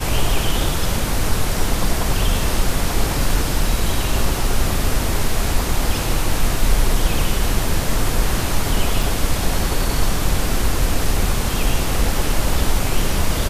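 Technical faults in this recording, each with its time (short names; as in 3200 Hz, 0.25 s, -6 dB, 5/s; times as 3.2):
9.03 gap 3.2 ms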